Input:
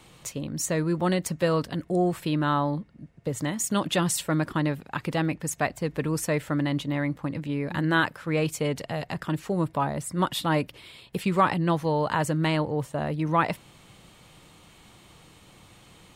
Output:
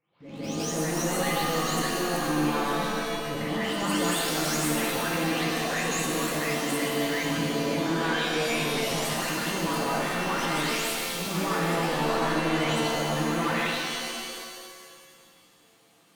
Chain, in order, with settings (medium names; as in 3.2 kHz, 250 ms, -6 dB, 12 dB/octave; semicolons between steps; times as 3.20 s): delay that grows with frequency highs late, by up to 519 ms; high-pass 190 Hz 12 dB/octave; expander -46 dBFS; waveshaping leveller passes 3; peak limiter -34.5 dBFS, peak gain reduction 22.5 dB; transient shaper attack -10 dB, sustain +2 dB; reverse echo 159 ms -8.5 dB; pitch-shifted reverb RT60 1.9 s, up +7 st, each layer -2 dB, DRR -1 dB; trim +7 dB